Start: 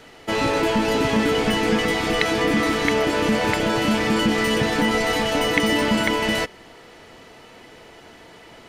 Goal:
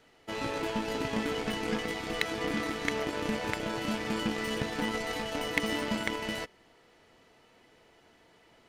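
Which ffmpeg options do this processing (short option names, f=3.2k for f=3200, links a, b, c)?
-af "aeval=exprs='0.841*(cos(1*acos(clip(val(0)/0.841,-1,1)))-cos(1*PI/2))+0.075*(cos(7*acos(clip(val(0)/0.841,-1,1)))-cos(7*PI/2))':c=same,volume=-7.5dB"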